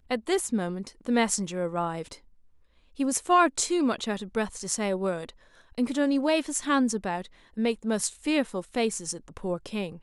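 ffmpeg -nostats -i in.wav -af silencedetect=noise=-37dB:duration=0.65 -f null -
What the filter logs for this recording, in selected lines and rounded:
silence_start: 2.15
silence_end: 2.99 | silence_duration: 0.85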